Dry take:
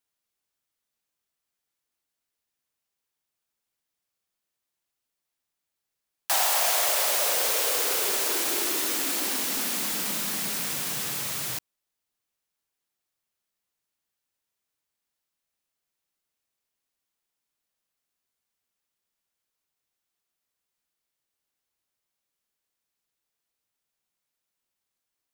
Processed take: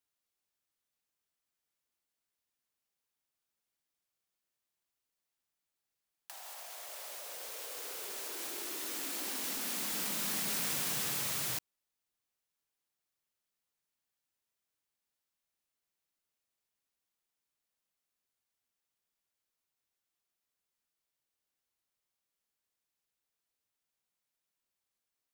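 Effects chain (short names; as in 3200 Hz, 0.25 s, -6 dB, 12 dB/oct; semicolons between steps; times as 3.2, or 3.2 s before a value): negative-ratio compressor -30 dBFS, ratio -0.5; gain -8 dB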